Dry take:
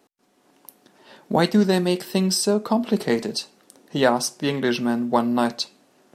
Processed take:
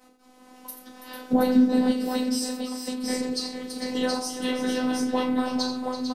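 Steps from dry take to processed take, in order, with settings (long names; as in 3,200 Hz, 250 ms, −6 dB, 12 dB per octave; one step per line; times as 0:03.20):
rectangular room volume 150 cubic metres, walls furnished, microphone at 4.7 metres
downward compressor 6 to 1, threshold −24 dBFS, peak gain reduction 22 dB
0:02.43–0:03.04: guitar amp tone stack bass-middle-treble 10-0-10
multi-tap delay 84/333/449/724 ms −10.5/−12/−8.5/−3.5 dB
phases set to zero 253 Hz
0:01.33–0:01.92: low-shelf EQ 440 Hz +10.5 dB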